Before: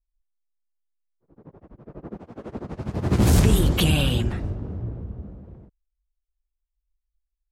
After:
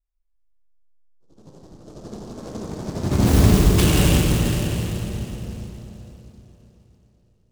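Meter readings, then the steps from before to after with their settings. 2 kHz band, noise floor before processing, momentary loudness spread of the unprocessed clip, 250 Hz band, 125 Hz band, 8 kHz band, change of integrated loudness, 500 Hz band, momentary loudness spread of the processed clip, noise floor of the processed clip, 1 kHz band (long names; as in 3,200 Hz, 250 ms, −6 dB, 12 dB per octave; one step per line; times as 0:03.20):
+3.0 dB, −82 dBFS, 21 LU, +4.0 dB, +3.5 dB, +5.5 dB, +3.0 dB, +4.0 dB, 21 LU, −64 dBFS, +4.0 dB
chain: four-comb reverb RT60 3.7 s, combs from 29 ms, DRR −3 dB
low-pass that shuts in the quiet parts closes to 2,100 Hz, open at −14.5 dBFS
short delay modulated by noise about 5,000 Hz, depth 0.056 ms
level −1 dB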